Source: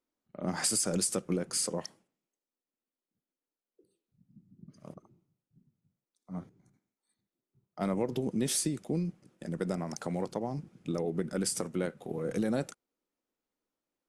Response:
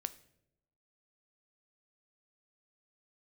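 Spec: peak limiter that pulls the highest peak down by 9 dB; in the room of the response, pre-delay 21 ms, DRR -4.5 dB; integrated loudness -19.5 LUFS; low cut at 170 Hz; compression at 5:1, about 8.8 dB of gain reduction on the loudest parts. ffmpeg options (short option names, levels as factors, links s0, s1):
-filter_complex "[0:a]highpass=170,acompressor=threshold=0.0141:ratio=5,alimiter=level_in=2.99:limit=0.0631:level=0:latency=1,volume=0.335,asplit=2[s0][s1];[1:a]atrim=start_sample=2205,adelay=21[s2];[s1][s2]afir=irnorm=-1:irlink=0,volume=2[s3];[s0][s3]amix=inputs=2:normalize=0,volume=9.44"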